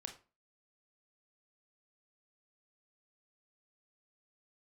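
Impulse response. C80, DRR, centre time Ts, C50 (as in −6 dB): 16.5 dB, 4.5 dB, 13 ms, 10.5 dB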